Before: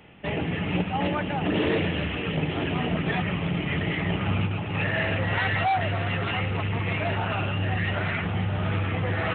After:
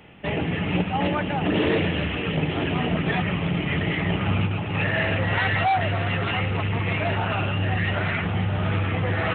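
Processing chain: gain +2.5 dB

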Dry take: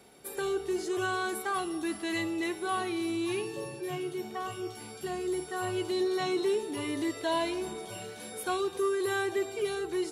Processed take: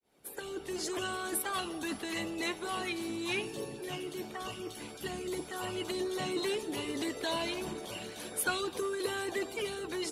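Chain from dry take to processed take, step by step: opening faded in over 0.86 s; harmonic-percussive split harmonic -15 dB; gain +8.5 dB

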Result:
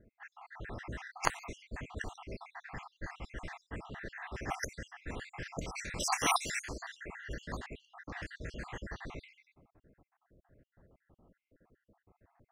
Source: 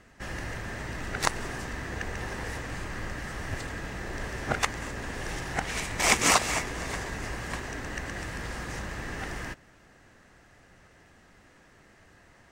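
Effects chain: random spectral dropouts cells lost 66%; low-pass opened by the level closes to 660 Hz, open at -31 dBFS; gain -3.5 dB

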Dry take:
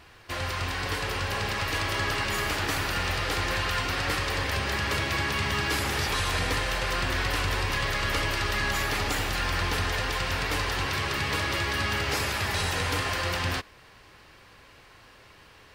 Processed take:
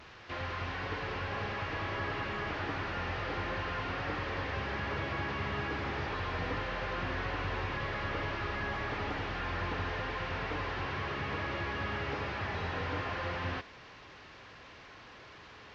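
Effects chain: delta modulation 32 kbps, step -39.5 dBFS; HPF 74 Hz 6 dB/oct; tone controls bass 0 dB, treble -10 dB; gain -5 dB

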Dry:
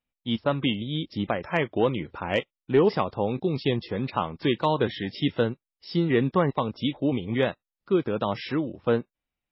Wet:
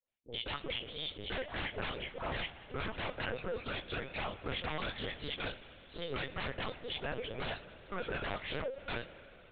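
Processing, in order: high shelf 3100 Hz +5.5 dB; harmonic-percussive split harmonic -10 dB; tilt +1.5 dB/oct; compressor 2.5:1, threshold -27 dBFS, peak gain reduction 5.5 dB; resonant high-pass 510 Hz, resonance Q 4.9; dispersion highs, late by 82 ms, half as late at 1100 Hz; wavefolder -27.5 dBFS; spring tank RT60 3.7 s, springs 53 ms, chirp 40 ms, DRR 12 dB; LPC vocoder at 8 kHz pitch kept; Doppler distortion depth 0.18 ms; gain -4.5 dB

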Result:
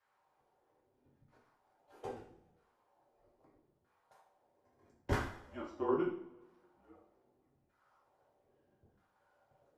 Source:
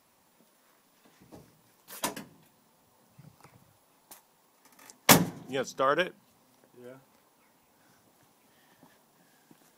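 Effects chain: LFO band-pass saw down 0.78 Hz 340–1600 Hz; frequency shift -180 Hz; two-slope reverb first 0.53 s, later 1.7 s, from -21 dB, DRR -5 dB; gain -8 dB

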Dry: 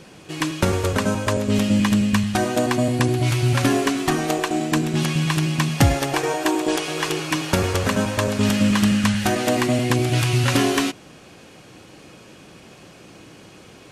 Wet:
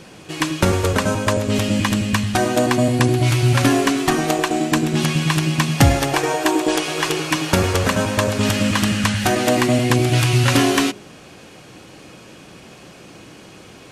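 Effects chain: de-hum 51.36 Hz, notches 11; gain +3.5 dB

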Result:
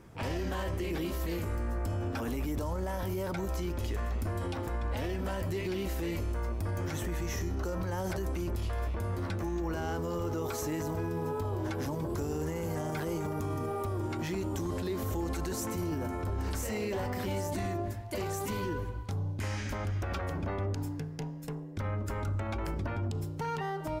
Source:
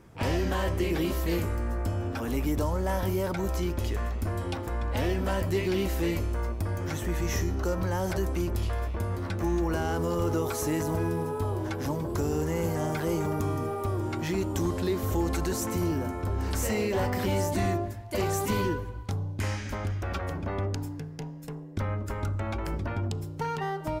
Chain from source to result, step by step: 9.55–11.65 bell 9900 Hz -11 dB 0.23 oct; limiter -26 dBFS, peak gain reduction 8.5 dB

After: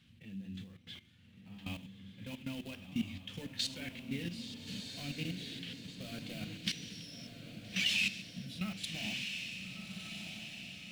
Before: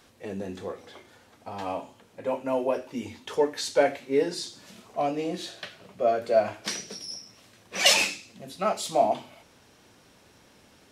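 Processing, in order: in parallel at -1.5 dB: compressor 6:1, threshold -38 dBFS, peak gain reduction 21 dB; on the sum: HPF 69 Hz 12 dB/oct; bell 410 Hz -8 dB 0.26 oct; notches 50/100/150/200/250/300 Hz; short-mantissa float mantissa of 2-bit; level quantiser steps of 15 dB; EQ curve 200 Hz 0 dB, 310 Hz -16 dB, 600 Hz -29 dB, 970 Hz -28 dB, 3000 Hz -1 dB, 5600 Hz -14 dB; on a send: diffused feedback echo 1.314 s, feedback 53%, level -6 dB; on the sum: mismatched tape noise reduction decoder only; gain +5 dB

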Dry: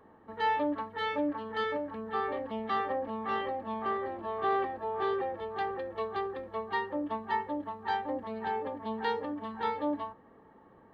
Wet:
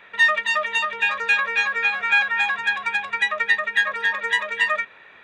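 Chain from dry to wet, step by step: band shelf 1000 Hz +11 dB; wide varispeed 2.09×; gain +3 dB

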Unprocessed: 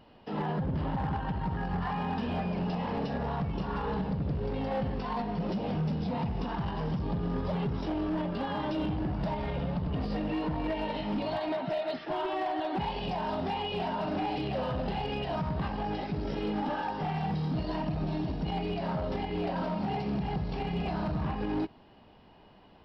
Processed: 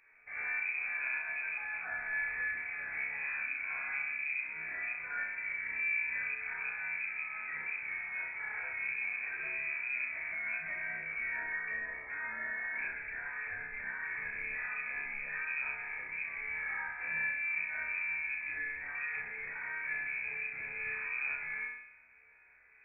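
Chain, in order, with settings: resonator 71 Hz, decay 0.42 s, harmonics all, mix 90%; flutter echo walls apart 5.5 m, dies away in 0.68 s; inverted band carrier 2500 Hz

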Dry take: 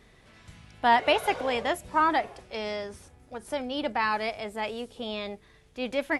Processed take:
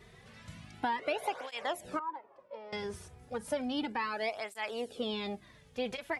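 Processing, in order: compressor 10:1, threshold -31 dBFS, peak gain reduction 15.5 dB; 1.99–2.73 double band-pass 730 Hz, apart 0.82 oct; tape flanging out of phase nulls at 0.33 Hz, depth 3.8 ms; gain +3.5 dB

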